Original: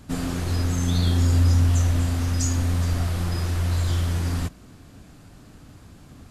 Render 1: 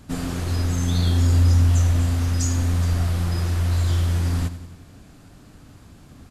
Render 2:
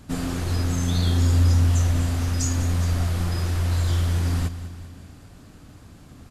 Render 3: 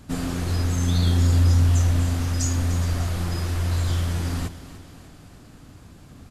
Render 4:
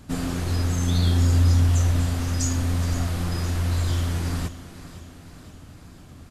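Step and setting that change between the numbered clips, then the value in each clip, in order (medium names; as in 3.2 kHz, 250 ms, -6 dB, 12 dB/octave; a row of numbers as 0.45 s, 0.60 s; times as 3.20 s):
feedback delay, time: 93 ms, 198 ms, 298 ms, 516 ms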